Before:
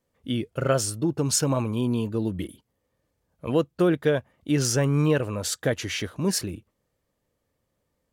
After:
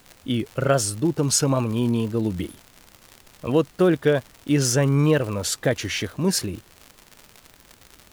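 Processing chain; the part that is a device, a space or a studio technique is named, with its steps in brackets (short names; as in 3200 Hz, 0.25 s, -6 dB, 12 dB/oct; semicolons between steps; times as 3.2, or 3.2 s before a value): vinyl LP (wow and flutter; crackle 110/s -33 dBFS; pink noise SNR 31 dB); gain +3 dB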